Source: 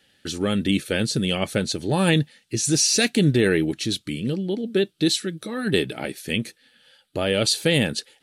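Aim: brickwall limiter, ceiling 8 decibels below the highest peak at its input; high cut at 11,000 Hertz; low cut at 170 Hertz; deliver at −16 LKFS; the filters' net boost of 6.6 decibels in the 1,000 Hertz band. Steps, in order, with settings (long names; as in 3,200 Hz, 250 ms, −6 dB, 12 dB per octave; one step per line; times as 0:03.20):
high-pass filter 170 Hz
low-pass filter 11,000 Hz
parametric band 1,000 Hz +9 dB
level +8.5 dB
brickwall limiter −3 dBFS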